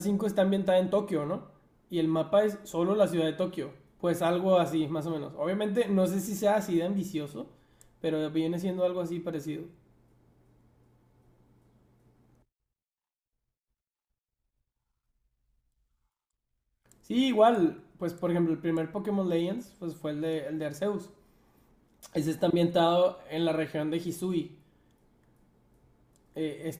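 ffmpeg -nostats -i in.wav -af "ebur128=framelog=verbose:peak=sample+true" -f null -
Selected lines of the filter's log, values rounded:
Integrated loudness:
  I:         -29.2 LUFS
  Threshold: -40.7 LUFS
Loudness range:
  LRA:         6.9 LU
  Threshold: -51.0 LUFS
  LRA low:   -35.3 LUFS
  LRA high:  -28.4 LUFS
Sample peak:
  Peak:      -10.2 dBFS
True peak:
  Peak:      -10.2 dBFS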